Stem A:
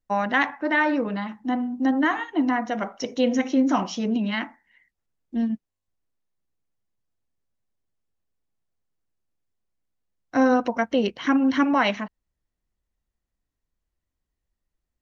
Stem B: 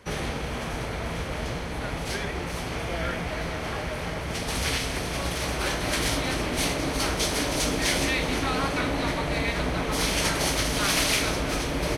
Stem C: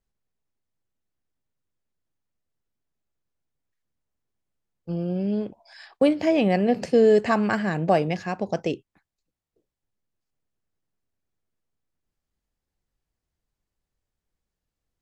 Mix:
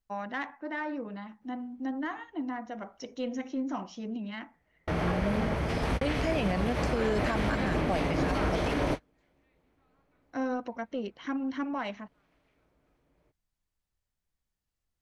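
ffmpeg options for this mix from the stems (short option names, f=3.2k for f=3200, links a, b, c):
-filter_complex "[0:a]acontrast=83,adynamicequalizer=threshold=0.0355:dfrequency=1500:dqfactor=0.7:tfrequency=1500:tqfactor=0.7:attack=5:release=100:ratio=0.375:range=2.5:mode=cutabove:tftype=highshelf,volume=-19dB[a];[1:a]acrossover=split=3300[b][c];[c]acompressor=threshold=-41dB:ratio=4:attack=1:release=60[d];[b][d]amix=inputs=2:normalize=0,highshelf=f=2.5k:g=-12,adelay=1350,volume=2.5dB[e];[2:a]equalizer=f=380:t=o:w=1.5:g=-7.5,bandreject=f=50:t=h:w=6,bandreject=f=100:t=h:w=6,bandreject=f=150:t=h:w=6,volume=-2.5dB,asplit=2[f][g];[g]apad=whole_len=587515[h];[e][h]sidechaingate=range=-45dB:threshold=-58dB:ratio=16:detection=peak[i];[a][i][f]amix=inputs=3:normalize=0,alimiter=limit=-19dB:level=0:latency=1:release=98"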